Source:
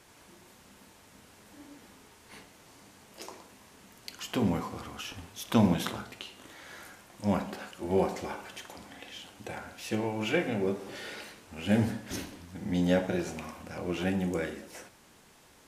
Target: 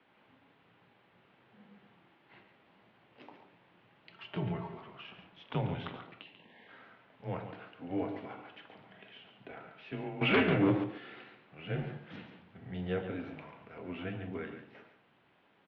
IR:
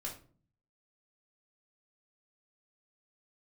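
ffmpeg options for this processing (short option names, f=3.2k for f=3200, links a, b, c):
-filter_complex "[0:a]asettb=1/sr,asplit=3[a][b][c];[a]atrim=end=4.094[d];[b]atrim=start=4.09:end=4.78,asetpts=PTS-STARTPTS,afade=t=in:d=0.004:c=qsin,afade=t=out:st=0.686:d=0.004:c=qsin,aecho=1:1:4.2:0.57,atrim=end_sample=30429[e];[c]atrim=start=4.776[f];[d][e]acrossfade=d=0.004:c1=hsin:c2=qsin[g];[g][f]acrossfade=d=0.004:c1=qsin:c2=hsin,asplit=3[h][i][j];[h]afade=t=out:st=6.23:d=0.02[k];[i]asuperstop=centerf=1400:order=12:qfactor=2.7,afade=t=in:st=6.23:d=0.02,afade=t=out:st=6.67:d=0.02[l];[j]afade=t=in:st=6.67:d=0.02[m];[k][l][m]amix=inputs=3:normalize=0,asettb=1/sr,asplit=3[n][o][p];[n]atrim=end=10.214[q];[o]atrim=start=10.21:end=10.84,asetpts=PTS-STARTPTS,afade=t=in:d=0.004:c=qsin,afade=t=out:st=0.626:d=0.004:c=qsin,aeval=exprs='0.237*sin(PI/2*3.16*val(0)/0.237)':c=same[r];[p]atrim=start=10.836[s];[q][r]acrossfade=d=0.004:c1=hsin:c2=qsin[t];[t][s]acrossfade=d=0.004:c1=qsin:c2=hsin,aecho=1:1:140:0.316,highpass=f=220:t=q:w=0.5412,highpass=f=220:t=q:w=1.307,lowpass=f=3.4k:t=q:w=0.5176,lowpass=f=3.4k:t=q:w=0.7071,lowpass=f=3.4k:t=q:w=1.932,afreqshift=-84,volume=-7.5dB"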